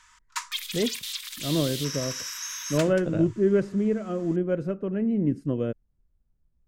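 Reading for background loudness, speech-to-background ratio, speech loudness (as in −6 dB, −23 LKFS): −32.5 LKFS, 5.5 dB, −27.0 LKFS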